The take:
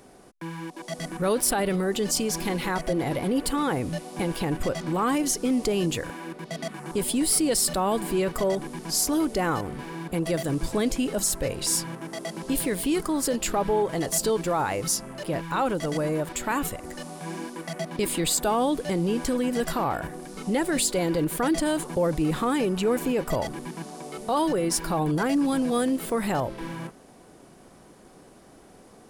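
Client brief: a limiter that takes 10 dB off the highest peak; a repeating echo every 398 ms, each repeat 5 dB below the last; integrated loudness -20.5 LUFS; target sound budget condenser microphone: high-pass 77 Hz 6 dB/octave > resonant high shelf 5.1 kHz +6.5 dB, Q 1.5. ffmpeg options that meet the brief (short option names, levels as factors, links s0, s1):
-af "alimiter=limit=0.0891:level=0:latency=1,highpass=f=77:p=1,highshelf=f=5100:t=q:w=1.5:g=6.5,aecho=1:1:398|796|1194|1592|1990|2388|2786:0.562|0.315|0.176|0.0988|0.0553|0.031|0.0173,volume=2"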